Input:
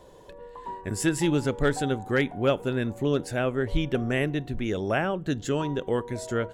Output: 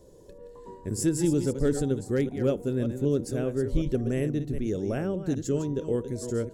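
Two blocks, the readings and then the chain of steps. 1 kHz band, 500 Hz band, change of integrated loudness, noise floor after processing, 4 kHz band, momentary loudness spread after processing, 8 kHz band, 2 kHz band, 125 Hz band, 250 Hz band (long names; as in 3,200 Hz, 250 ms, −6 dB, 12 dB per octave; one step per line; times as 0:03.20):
−12.0 dB, −1.0 dB, −1.0 dB, −49 dBFS, −9.5 dB, 5 LU, +0.5 dB, −13.0 dB, +0.5 dB, +0.5 dB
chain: delay that plays each chunk backwards 191 ms, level −9 dB
flat-topped bell 1,600 Hz −13.5 dB 2.8 octaves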